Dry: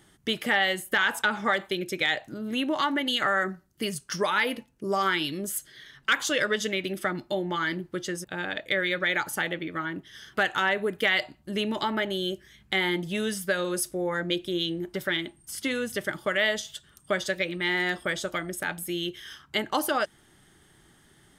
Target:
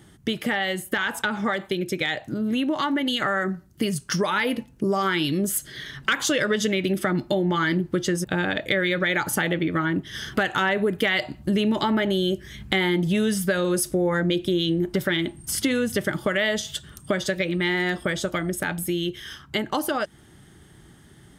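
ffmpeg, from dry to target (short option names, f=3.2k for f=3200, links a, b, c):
-filter_complex "[0:a]highpass=45,lowshelf=f=310:g=10,dynaudnorm=f=300:g=31:m=11.5dB,asplit=2[a][b];[b]alimiter=limit=-10dB:level=0:latency=1,volume=-0.5dB[c];[a][c]amix=inputs=2:normalize=0,acompressor=threshold=-21dB:ratio=2.5,volume=-2.5dB"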